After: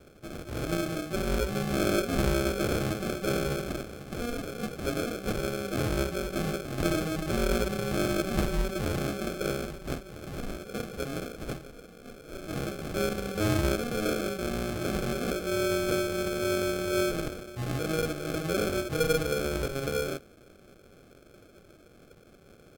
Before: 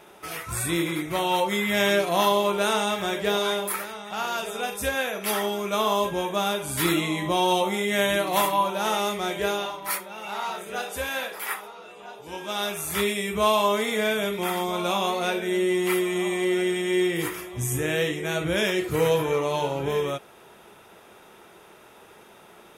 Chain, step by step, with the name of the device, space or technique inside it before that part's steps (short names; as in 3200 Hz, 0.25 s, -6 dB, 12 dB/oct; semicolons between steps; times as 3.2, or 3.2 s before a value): crushed at another speed (playback speed 1.25×; sample-and-hold 37×; playback speed 0.8×); gain -4.5 dB